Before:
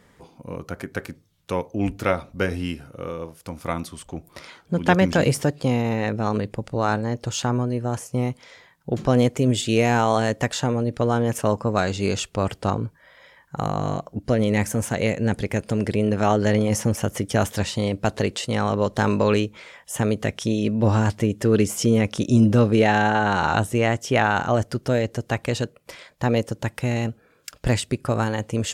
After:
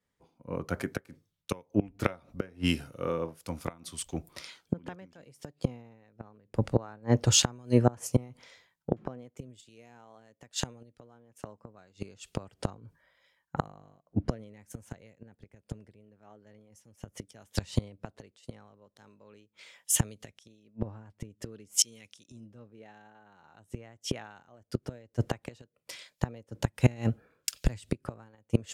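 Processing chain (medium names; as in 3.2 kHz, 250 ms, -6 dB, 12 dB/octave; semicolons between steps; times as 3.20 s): inverted gate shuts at -15 dBFS, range -24 dB; three bands expanded up and down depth 100%; trim -2 dB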